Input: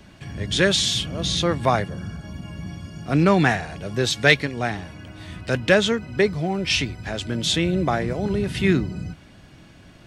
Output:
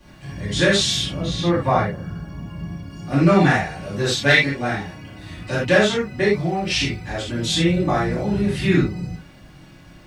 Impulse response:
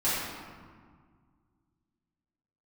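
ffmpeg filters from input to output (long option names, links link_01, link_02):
-filter_complex "[0:a]asettb=1/sr,asplit=3[link_01][link_02][link_03];[link_01]atrim=end=1.164[link_04];[link_02]atrim=start=1.16:end=2.9,asetpts=PTS-STARTPTS,afade=type=in:duration=0.004:curve=qsin,afade=type=out:start_time=1.736:duration=0.004:curve=qsin,highshelf=frequency=3700:gain=-11[link_05];[link_03]atrim=start=2.896[link_06];[link_04][link_05]acrossfade=duration=0.004:curve1=hsin:curve2=qsin[link_07];[link_07][link_06]acrossfade=duration=0.004:curve1=qsin:curve2=hsin,acrusher=bits=10:mix=0:aa=0.000001[link_08];[1:a]atrim=start_sample=2205,atrim=end_sample=4410[link_09];[link_08][link_09]afir=irnorm=-1:irlink=0,volume=-7dB"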